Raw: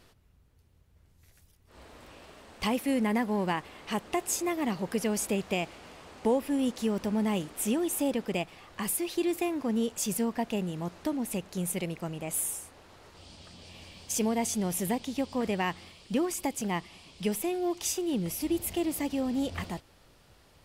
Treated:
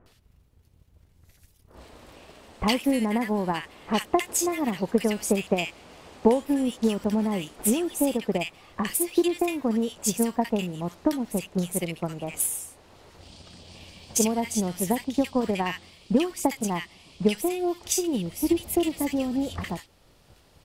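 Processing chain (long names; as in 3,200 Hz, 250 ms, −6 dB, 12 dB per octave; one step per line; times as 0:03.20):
transient designer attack +8 dB, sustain −2 dB
multiband delay without the direct sound lows, highs 60 ms, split 1,500 Hz
level +2 dB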